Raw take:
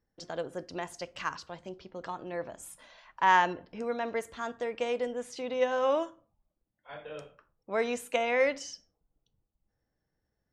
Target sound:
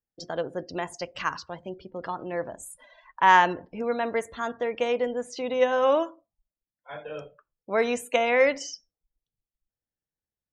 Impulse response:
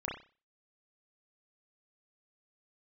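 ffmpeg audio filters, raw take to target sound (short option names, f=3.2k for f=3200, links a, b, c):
-af "afftdn=nr=21:nf=-52,volume=5.5dB"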